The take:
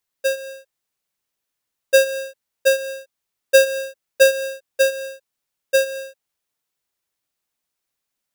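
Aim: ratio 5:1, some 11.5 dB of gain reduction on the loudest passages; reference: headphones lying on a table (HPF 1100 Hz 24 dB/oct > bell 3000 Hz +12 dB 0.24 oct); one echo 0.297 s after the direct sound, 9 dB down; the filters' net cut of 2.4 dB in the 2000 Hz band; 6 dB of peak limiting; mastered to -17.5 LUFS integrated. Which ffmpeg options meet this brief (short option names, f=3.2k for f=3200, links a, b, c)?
-af "equalizer=f=2k:t=o:g=-5.5,acompressor=threshold=-23dB:ratio=5,alimiter=limit=-23dB:level=0:latency=1,highpass=f=1.1k:w=0.5412,highpass=f=1.1k:w=1.3066,equalizer=f=3k:t=o:w=0.24:g=12,aecho=1:1:297:0.355,volume=19dB"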